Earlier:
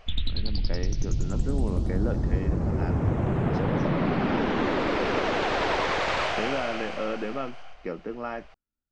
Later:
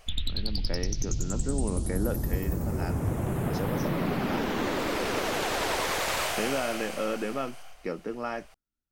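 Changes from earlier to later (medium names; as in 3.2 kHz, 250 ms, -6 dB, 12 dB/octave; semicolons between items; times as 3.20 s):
background -4.0 dB; master: remove Gaussian low-pass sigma 1.9 samples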